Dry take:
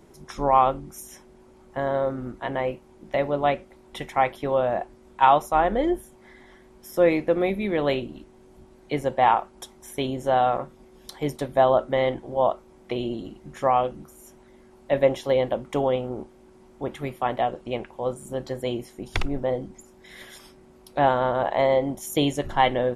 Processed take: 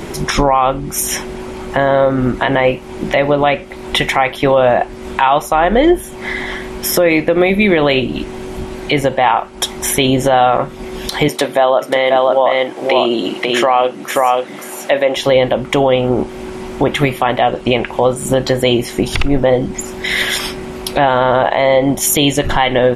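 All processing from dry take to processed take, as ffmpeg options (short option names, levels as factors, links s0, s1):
-filter_complex "[0:a]asettb=1/sr,asplit=3[s0][s1][s2];[s0]atrim=end=11.284[s3];[s1]atrim=start=11.28:end=15.17,asetpts=PTS-STARTPTS,afade=t=in:d=0.004:c=qsin,afade=t=out:st=3.886:d=0.004:c=qsin,highpass=310,aecho=1:1:535:0.473,atrim=end_sample=171549[s4];[s2]atrim=start=15.166[s5];[s3][s4]acrossfade=d=0.004:c1=hsin:c2=qsin[s6];[s6][s5]acrossfade=d=0.004:c1=qsin:c2=hsin,equalizer=f=2600:w=0.89:g=7,acompressor=threshold=0.0126:ratio=2.5,alimiter=level_in=21.1:limit=0.891:release=50:level=0:latency=1,volume=0.891"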